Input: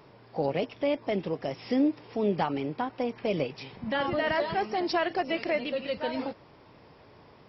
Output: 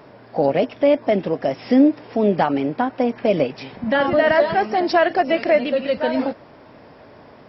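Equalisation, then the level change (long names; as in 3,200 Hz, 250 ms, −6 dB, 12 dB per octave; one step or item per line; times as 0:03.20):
graphic EQ with 15 bands 250 Hz +7 dB, 630 Hz +8 dB, 1,600 Hz +6 dB
+5.0 dB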